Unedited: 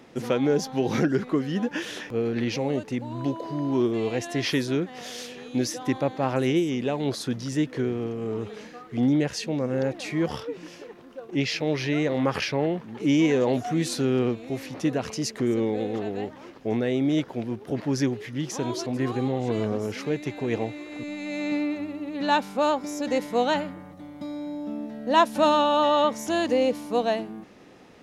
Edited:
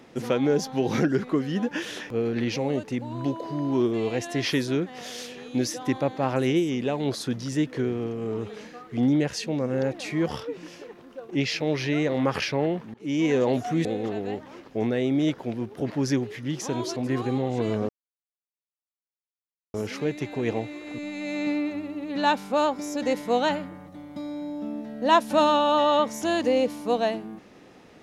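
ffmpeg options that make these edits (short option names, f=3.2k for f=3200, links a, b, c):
-filter_complex "[0:a]asplit=4[a][b][c][d];[a]atrim=end=12.94,asetpts=PTS-STARTPTS,afade=t=out:st=12.936:d=0.004:c=hsin:silence=0.0749894[e];[b]atrim=start=12.94:end=13.852,asetpts=PTS-STARTPTS,afade=t=in:d=0.41:silence=0.0749894[f];[c]atrim=start=15.748:end=19.79,asetpts=PTS-STARTPTS,afade=t=out:st=4.038:d=0.004:c=hsin,apad=pad_dur=1.85[g];[d]atrim=start=19.79,asetpts=PTS-STARTPTS,afade=t=in:d=0.004:c=hsin[h];[e][f]concat=n=2:v=0:a=1[i];[g][h]concat=n=2:v=0:a=1[j];[i][j]acrossfade=d=0.004:c1=hsin:c2=hsin"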